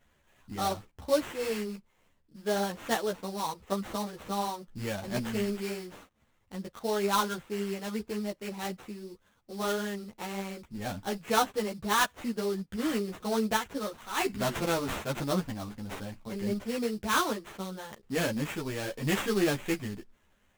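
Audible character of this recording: aliases and images of a low sample rate 4.9 kHz, jitter 20%; a shimmering, thickened sound

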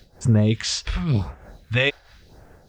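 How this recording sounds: phasing stages 2, 0.9 Hz, lowest notch 170–3800 Hz; a quantiser's noise floor 12-bit, dither none; random flutter of the level

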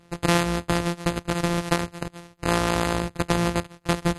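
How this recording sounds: a buzz of ramps at a fixed pitch in blocks of 256 samples; MP2

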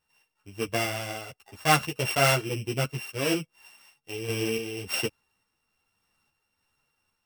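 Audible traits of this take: a buzz of ramps at a fixed pitch in blocks of 16 samples; random-step tremolo; a shimmering, thickened sound

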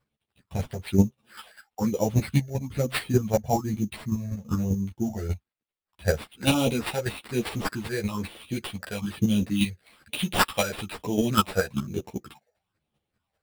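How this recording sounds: phasing stages 6, 1.1 Hz, lowest notch 270–1700 Hz; aliases and images of a low sample rate 6.4 kHz, jitter 0%; chopped level 5.1 Hz, depth 60%, duty 15%; a shimmering, thickened sound

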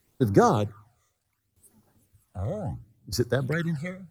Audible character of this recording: phasing stages 12, 0.7 Hz, lowest notch 270–3000 Hz; a quantiser's noise floor 12-bit, dither none; tremolo saw down 0.64 Hz, depth 75%

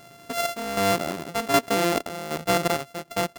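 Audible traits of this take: a buzz of ramps at a fixed pitch in blocks of 64 samples; chopped level 1.3 Hz, depth 60%, duty 60%

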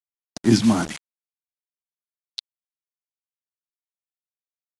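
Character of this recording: phasing stages 2, 2.9 Hz, lowest notch 590–4100 Hz; a quantiser's noise floor 6-bit, dither none; tremolo saw up 6.9 Hz, depth 35%; AAC

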